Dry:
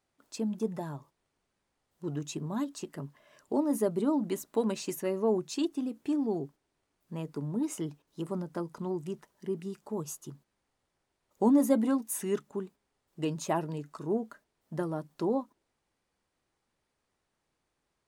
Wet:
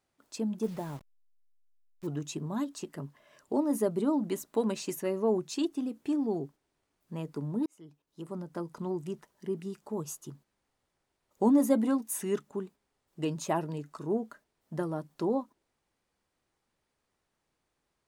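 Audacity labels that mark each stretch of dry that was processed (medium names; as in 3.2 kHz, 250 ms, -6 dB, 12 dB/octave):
0.630000	2.070000	send-on-delta sampling step -47.5 dBFS
7.660000	8.780000	fade in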